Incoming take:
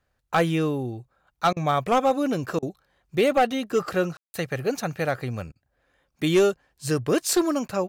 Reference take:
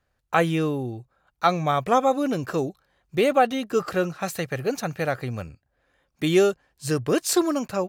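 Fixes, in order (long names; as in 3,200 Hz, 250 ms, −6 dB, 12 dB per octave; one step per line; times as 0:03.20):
clipped peaks rebuilt −13.5 dBFS
ambience match 0:04.17–0:04.34
repair the gap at 0:01.53/0:02.59/0:05.52, 34 ms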